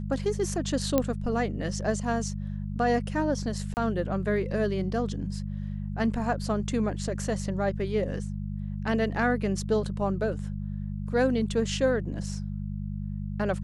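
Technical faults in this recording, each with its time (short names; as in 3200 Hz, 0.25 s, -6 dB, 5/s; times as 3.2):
hum 50 Hz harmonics 4 -33 dBFS
0.98 pop -10 dBFS
3.74–3.77 gap 29 ms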